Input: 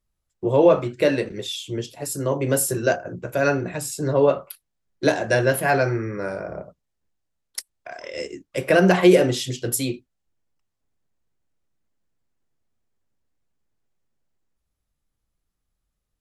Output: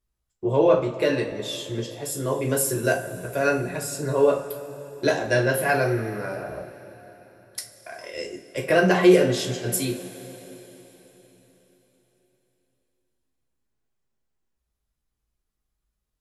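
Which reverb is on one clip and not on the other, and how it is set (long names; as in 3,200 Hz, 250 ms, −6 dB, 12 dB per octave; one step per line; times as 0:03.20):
coupled-rooms reverb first 0.28 s, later 4.2 s, from −20 dB, DRR 1 dB
level −4 dB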